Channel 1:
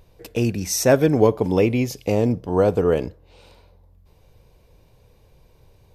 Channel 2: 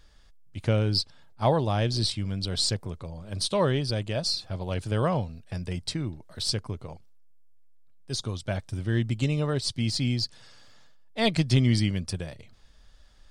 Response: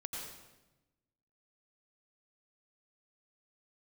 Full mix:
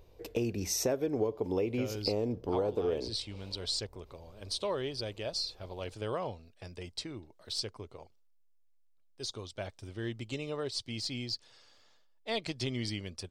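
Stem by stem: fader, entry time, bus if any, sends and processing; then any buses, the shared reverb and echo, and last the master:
-5.0 dB, 0.00 s, no send, dry
-5.0 dB, 1.10 s, no send, low shelf 380 Hz -8.5 dB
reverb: off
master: fifteen-band EQ 160 Hz -7 dB, 400 Hz +5 dB, 1600 Hz -4 dB, 10000 Hz -7 dB; compressor 5:1, threshold -29 dBFS, peak gain reduction 15 dB

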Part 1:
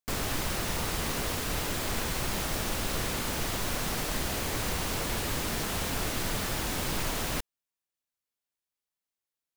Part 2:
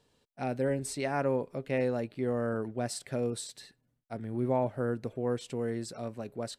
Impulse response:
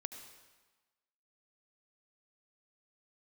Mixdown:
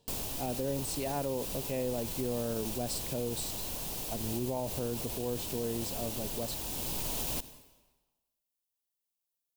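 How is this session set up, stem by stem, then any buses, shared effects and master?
-7.0 dB, 0.00 s, send -3.5 dB, high shelf 8500 Hz +10.5 dB; auto duck -11 dB, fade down 0.30 s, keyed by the second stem
+1.0 dB, 0.00 s, no send, dry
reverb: on, RT60 1.2 s, pre-delay 68 ms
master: band shelf 1600 Hz -9.5 dB 1.1 oct; limiter -24.5 dBFS, peak gain reduction 9 dB

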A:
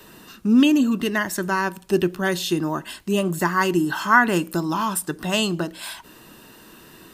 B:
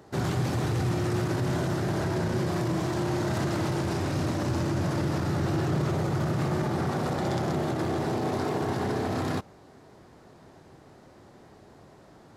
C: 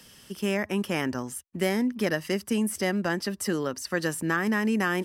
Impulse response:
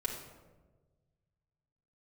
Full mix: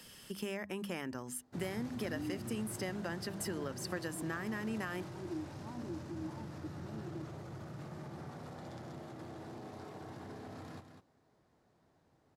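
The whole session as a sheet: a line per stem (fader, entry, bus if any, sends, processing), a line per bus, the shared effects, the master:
-14.0 dB, 1.55 s, bus A, no send, no echo send, vocal tract filter u
-19.5 dB, 1.40 s, no bus, no send, echo send -8.5 dB, notch 380 Hz, Q 12
-2.5 dB, 0.00 s, bus A, no send, no echo send, notch 5800 Hz
bus A: 0.0 dB, notches 50/100/150/200/250 Hz; compressor 4:1, threshold -38 dBFS, peak gain reduction 13 dB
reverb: off
echo: echo 0.2 s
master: dry

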